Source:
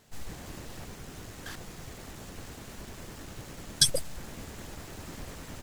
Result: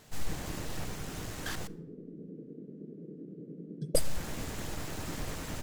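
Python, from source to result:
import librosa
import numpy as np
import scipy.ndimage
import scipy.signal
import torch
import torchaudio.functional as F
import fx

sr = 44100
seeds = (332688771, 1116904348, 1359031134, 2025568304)

y = fx.ellip_bandpass(x, sr, low_hz=160.0, high_hz=450.0, order=3, stop_db=40, at=(1.67, 3.95))
y = fx.room_shoebox(y, sr, seeds[0], volume_m3=3100.0, walls='furnished', distance_m=0.52)
y = y * 10.0 ** (4.0 / 20.0)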